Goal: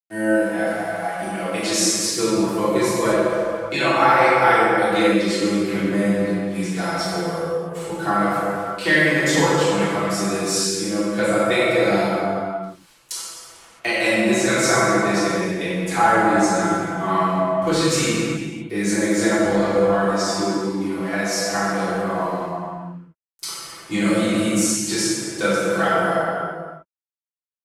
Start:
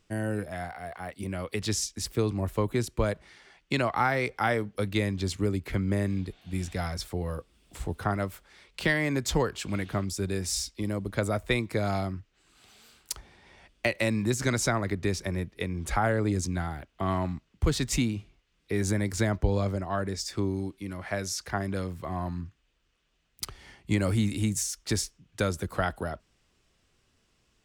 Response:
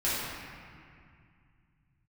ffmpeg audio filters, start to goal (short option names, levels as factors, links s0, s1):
-filter_complex "[0:a]highpass=270,aecho=1:1:6:0.75,aeval=exprs='val(0)*gte(abs(val(0)),0.00376)':c=same[s0];[1:a]atrim=start_sample=2205,afade=t=out:st=0.44:d=0.01,atrim=end_sample=19845,asetrate=25578,aresample=44100[s1];[s0][s1]afir=irnorm=-1:irlink=0,asplit=3[s2][s3][s4];[s2]afade=t=out:st=0.66:d=0.02[s5];[s3]adynamicequalizer=threshold=0.0282:dfrequency=4800:dqfactor=0.7:tfrequency=4800:tqfactor=0.7:attack=5:release=100:ratio=0.375:range=2:mode=boostabove:tftype=highshelf,afade=t=in:st=0.66:d=0.02,afade=t=out:st=3.12:d=0.02[s6];[s4]afade=t=in:st=3.12:d=0.02[s7];[s5][s6][s7]amix=inputs=3:normalize=0,volume=0.668"